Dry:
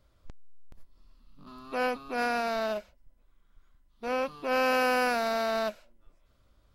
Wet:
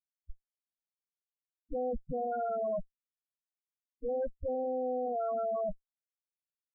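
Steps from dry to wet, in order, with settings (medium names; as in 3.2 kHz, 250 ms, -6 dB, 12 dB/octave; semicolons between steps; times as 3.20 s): Schmitt trigger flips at -35.5 dBFS; loudest bins only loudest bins 4; trim +2.5 dB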